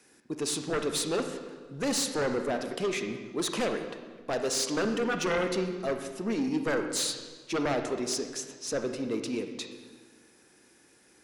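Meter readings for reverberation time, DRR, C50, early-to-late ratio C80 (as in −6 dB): 1.5 s, 5.5 dB, 6.5 dB, 8.5 dB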